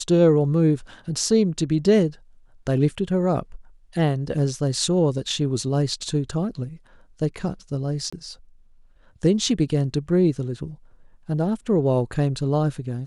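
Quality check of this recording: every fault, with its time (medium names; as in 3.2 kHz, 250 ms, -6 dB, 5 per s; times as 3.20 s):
8.10–8.12 s: dropout 25 ms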